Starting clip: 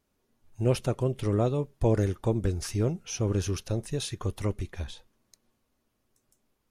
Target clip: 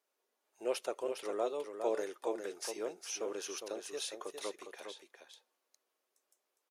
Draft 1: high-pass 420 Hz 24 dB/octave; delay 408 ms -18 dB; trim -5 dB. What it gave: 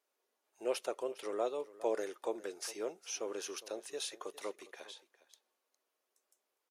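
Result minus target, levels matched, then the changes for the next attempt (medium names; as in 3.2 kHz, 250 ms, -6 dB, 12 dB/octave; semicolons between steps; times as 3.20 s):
echo-to-direct -11 dB
change: delay 408 ms -7 dB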